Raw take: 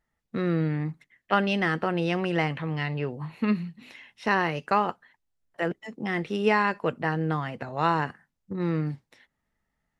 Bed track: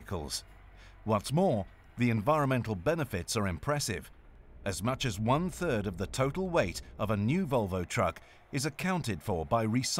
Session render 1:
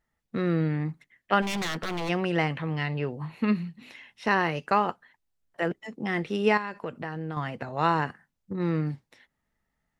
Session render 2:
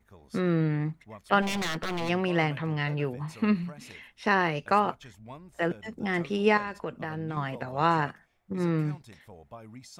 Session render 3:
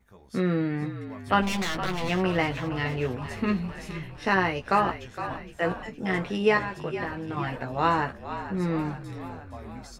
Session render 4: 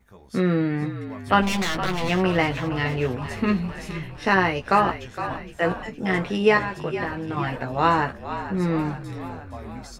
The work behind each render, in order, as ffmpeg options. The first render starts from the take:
-filter_complex "[0:a]asplit=3[s0][s1][s2];[s0]afade=t=out:st=1.41:d=0.02[s3];[s1]aeval=exprs='0.0562*(abs(mod(val(0)/0.0562+3,4)-2)-1)':c=same,afade=t=in:st=1.41:d=0.02,afade=t=out:st=2.08:d=0.02[s4];[s2]afade=t=in:st=2.08:d=0.02[s5];[s3][s4][s5]amix=inputs=3:normalize=0,asettb=1/sr,asplit=3[s6][s7][s8];[s6]atrim=end=6.574[s9];[s7]atrim=start=6.57:end=7.37,asetpts=PTS-STARTPTS,afade=t=in:d=0.004:c=qsin,afade=t=out:st=0.796:d=0.004:c=qsin,acompressor=threshold=0.0282:ratio=3:attack=3.2:release=140:knee=1:detection=peak[s10];[s8]atrim=start=7.366[s11];[s9][s10]acrossfade=d=0.004:c1=hsin:c2=qsin[s12];[s12][s11]acrossfade=d=0.004:c1=qsin:c2=hsin"
-filter_complex "[1:a]volume=0.141[s0];[0:a][s0]amix=inputs=2:normalize=0"
-filter_complex "[0:a]asplit=2[s0][s1];[s1]adelay=16,volume=0.531[s2];[s0][s2]amix=inputs=2:normalize=0,asplit=8[s3][s4][s5][s6][s7][s8][s9][s10];[s4]adelay=463,afreqshift=-48,volume=0.266[s11];[s5]adelay=926,afreqshift=-96,volume=0.164[s12];[s6]adelay=1389,afreqshift=-144,volume=0.102[s13];[s7]adelay=1852,afreqshift=-192,volume=0.0631[s14];[s8]adelay=2315,afreqshift=-240,volume=0.0394[s15];[s9]adelay=2778,afreqshift=-288,volume=0.0243[s16];[s10]adelay=3241,afreqshift=-336,volume=0.0151[s17];[s3][s11][s12][s13][s14][s15][s16][s17]amix=inputs=8:normalize=0"
-af "volume=1.58"

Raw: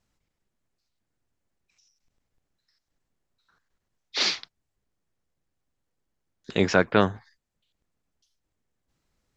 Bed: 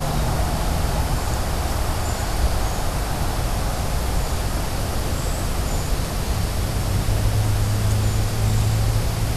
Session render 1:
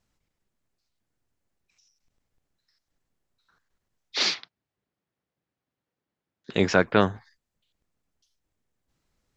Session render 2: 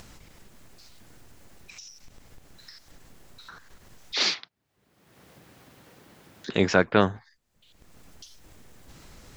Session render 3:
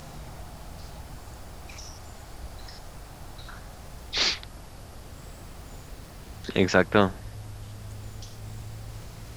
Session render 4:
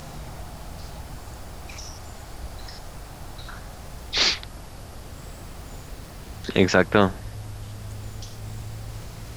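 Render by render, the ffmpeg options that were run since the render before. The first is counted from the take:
-filter_complex "[0:a]asettb=1/sr,asplit=3[s0][s1][s2];[s0]atrim=end=4.344[s3];[s1]atrim=start=4.34:end=6.54,asetpts=PTS-STARTPTS,afade=t=in:d=0.004:c=qsin,afade=t=out:st=2.196:d=0.004:c=qsin,highpass=120,lowpass=4000[s4];[s2]atrim=start=6.536[s5];[s3][s4]acrossfade=d=0.004:c1=hsin:c2=qsin[s6];[s6][s5]acrossfade=d=0.004:c1=qsin:c2=hsin"
-af "acompressor=mode=upward:threshold=0.0447:ratio=2.5"
-filter_complex "[1:a]volume=0.0944[s0];[0:a][s0]amix=inputs=2:normalize=0"
-af "volume=1.58,alimiter=limit=0.794:level=0:latency=1"

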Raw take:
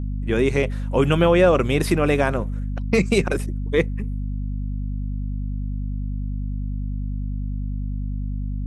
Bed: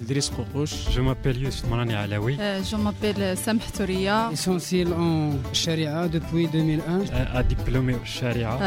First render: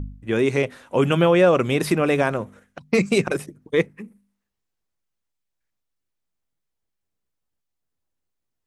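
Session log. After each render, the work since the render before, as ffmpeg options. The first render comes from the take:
-af "bandreject=f=50:t=h:w=4,bandreject=f=100:t=h:w=4,bandreject=f=150:t=h:w=4,bandreject=f=200:t=h:w=4,bandreject=f=250:t=h:w=4"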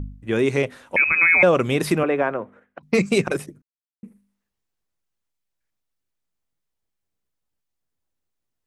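-filter_complex "[0:a]asettb=1/sr,asplit=3[s0][s1][s2];[s0]atrim=end=0.964[s3];[s1]atrim=start=0.96:end=1.43,asetpts=PTS-STARTPTS,afade=t=in:d=0.004:c=qsin,afade=t=out:st=0.466:d=0.004:c=qsin,lowpass=f=2300:t=q:w=0.5098,lowpass=f=2300:t=q:w=0.6013,lowpass=f=2300:t=q:w=0.9,lowpass=f=2300:t=q:w=2.563,afreqshift=-2700[s4];[s2]atrim=start=1.426[s5];[s3][s4]acrossfade=d=0.004:c1=hsin:c2=qsin[s6];[s6][s5]acrossfade=d=0.004:c1=qsin:c2=hsin,asettb=1/sr,asplit=3[s7][s8][s9];[s7]atrim=end=2.034[s10];[s8]atrim=start=2.03:end=2.83,asetpts=PTS-STARTPTS,afade=t=in:d=0.004:c=qsin,afade=t=out:st=0.796:d=0.004:c=qsin,acrossover=split=240 2500:gain=0.224 1 0.0631[s11][s12][s13];[s11][s12][s13]amix=inputs=3:normalize=0[s14];[s9]atrim=start=2.826[s15];[s10][s14]acrossfade=d=0.004:c1=hsin:c2=qsin[s16];[s16][s15]acrossfade=d=0.004:c1=qsin:c2=hsin,asplit=3[s17][s18][s19];[s17]atrim=end=3.62,asetpts=PTS-STARTPTS,afade=t=out:st=3.616:d=0.004:c=hsin[s20];[s18]atrim=start=3.62:end=4.03,asetpts=PTS-STARTPTS,volume=0[s21];[s19]atrim=start=4.03,asetpts=PTS-STARTPTS,afade=t=in:d=0.004:c=hsin[s22];[s20][s21][s22]concat=n=3:v=0:a=1"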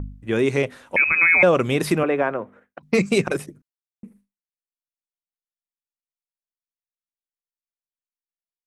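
-af "agate=range=0.0224:threshold=0.00282:ratio=3:detection=peak"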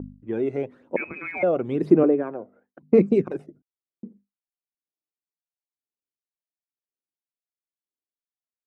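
-af "aphaser=in_gain=1:out_gain=1:delay=1.5:decay=0.57:speed=1:type=sinusoidal,bandpass=f=340:t=q:w=1.6:csg=0"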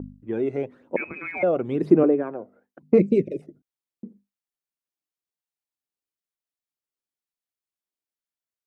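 -filter_complex "[0:a]asplit=3[s0][s1][s2];[s0]afade=t=out:st=2.98:d=0.02[s3];[s1]asuperstop=centerf=1100:order=20:qfactor=0.88,afade=t=in:st=2.98:d=0.02,afade=t=out:st=3.41:d=0.02[s4];[s2]afade=t=in:st=3.41:d=0.02[s5];[s3][s4][s5]amix=inputs=3:normalize=0"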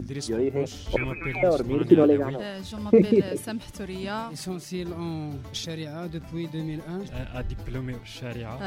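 -filter_complex "[1:a]volume=0.335[s0];[0:a][s0]amix=inputs=2:normalize=0"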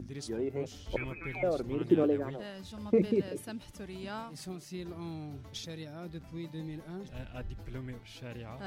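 -af "volume=0.355"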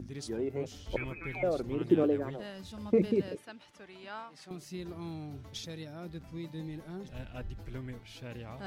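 -filter_complex "[0:a]asettb=1/sr,asplit=3[s0][s1][s2];[s0]atrim=end=3.354[s3];[s1]atrim=start=3.35:end=4.51,asetpts=PTS-STARTPTS,afade=t=in:d=0.004:c=qsin,afade=t=out:st=1.156:d=0.004:c=qsin,bandpass=f=1500:t=q:w=0.55[s4];[s2]atrim=start=4.506[s5];[s3][s4]acrossfade=d=0.004:c1=hsin:c2=qsin[s6];[s6][s5]acrossfade=d=0.004:c1=qsin:c2=hsin"

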